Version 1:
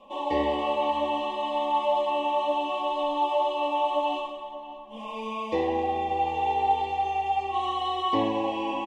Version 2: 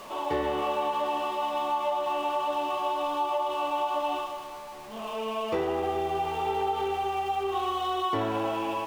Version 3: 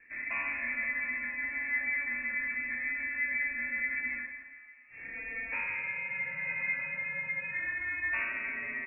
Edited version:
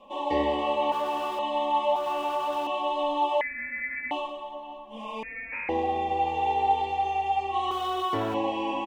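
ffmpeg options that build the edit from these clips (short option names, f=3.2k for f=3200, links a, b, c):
-filter_complex "[1:a]asplit=3[a][b][c];[2:a]asplit=2[d][e];[0:a]asplit=6[f][g][h][i][j][k];[f]atrim=end=0.922[l];[a]atrim=start=0.918:end=1.392[m];[g]atrim=start=1.388:end=1.962[n];[b]atrim=start=1.958:end=2.672[o];[h]atrim=start=2.668:end=3.412[p];[d]atrim=start=3.408:end=4.112[q];[i]atrim=start=4.108:end=5.232[r];[e]atrim=start=5.228:end=5.692[s];[j]atrim=start=5.688:end=7.712[t];[c]atrim=start=7.708:end=8.342[u];[k]atrim=start=8.338[v];[l][m]acrossfade=d=0.004:c1=hsin:c2=hsin[w];[w][n]acrossfade=d=0.004:c1=hsin:c2=hsin[x];[x][o]acrossfade=d=0.004:c1=hsin:c2=hsin[y];[y][p]acrossfade=d=0.004:c1=hsin:c2=hsin[z];[z][q]acrossfade=d=0.004:c1=hsin:c2=hsin[aa];[aa][r]acrossfade=d=0.004:c1=hsin:c2=hsin[ab];[ab][s]acrossfade=d=0.004:c1=hsin:c2=hsin[ac];[ac][t]acrossfade=d=0.004:c1=hsin:c2=hsin[ad];[ad][u]acrossfade=d=0.004:c1=hsin:c2=hsin[ae];[ae][v]acrossfade=d=0.004:c1=hsin:c2=hsin"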